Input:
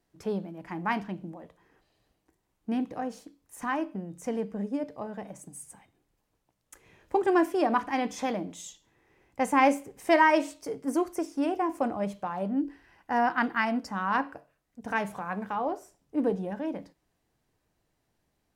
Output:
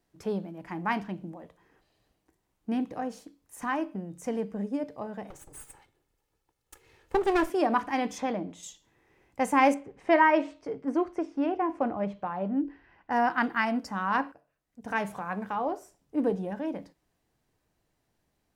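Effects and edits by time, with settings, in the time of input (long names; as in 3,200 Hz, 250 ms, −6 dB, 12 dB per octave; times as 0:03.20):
0:05.30–0:07.50: lower of the sound and its delayed copy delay 2.3 ms
0:08.18–0:08.63: low-pass filter 2,600 Hz 6 dB per octave
0:09.74–0:13.11: low-pass filter 2,800 Hz
0:14.32–0:15.02: fade in, from −14 dB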